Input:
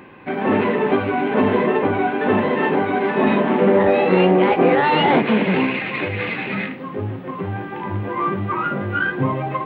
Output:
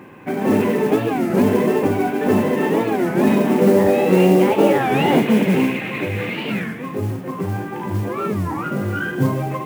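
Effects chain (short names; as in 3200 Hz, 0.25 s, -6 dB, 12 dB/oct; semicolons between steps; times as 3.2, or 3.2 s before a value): HPF 91 Hz; tilt -1.5 dB/oct; on a send: thin delay 78 ms, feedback 61%, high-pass 2000 Hz, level -6 dB; on the sum: dynamic EQ 1200 Hz, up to -5 dB, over -29 dBFS, Q 0.82; modulation noise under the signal 25 dB; record warp 33 1/3 rpm, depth 250 cents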